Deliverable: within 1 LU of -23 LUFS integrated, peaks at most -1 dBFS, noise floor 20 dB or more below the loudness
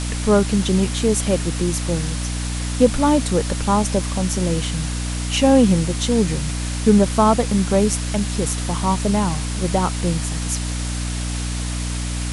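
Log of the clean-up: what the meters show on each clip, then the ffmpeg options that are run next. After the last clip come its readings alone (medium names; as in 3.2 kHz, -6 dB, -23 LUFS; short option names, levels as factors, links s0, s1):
hum 60 Hz; highest harmonic 300 Hz; hum level -22 dBFS; noise floor -25 dBFS; noise floor target -40 dBFS; loudness -20.0 LUFS; peak level -1.5 dBFS; loudness target -23.0 LUFS
-> -af "bandreject=f=60:t=h:w=4,bandreject=f=120:t=h:w=4,bandreject=f=180:t=h:w=4,bandreject=f=240:t=h:w=4,bandreject=f=300:t=h:w=4"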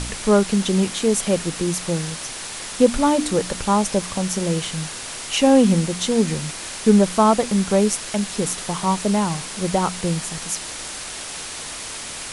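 hum not found; noise floor -33 dBFS; noise floor target -41 dBFS
-> -af "afftdn=nr=8:nf=-33"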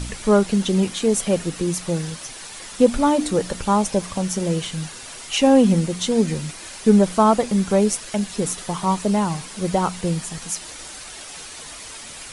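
noise floor -37 dBFS; noise floor target -41 dBFS
-> -af "afftdn=nr=6:nf=-37"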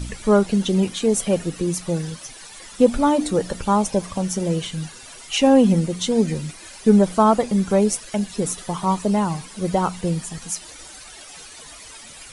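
noise floor -41 dBFS; loudness -20.5 LUFS; peak level -2.5 dBFS; loudness target -23.0 LUFS
-> -af "volume=0.75"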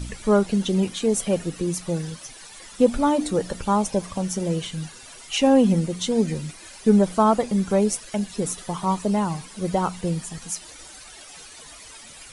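loudness -23.0 LUFS; peak level -5.0 dBFS; noise floor -44 dBFS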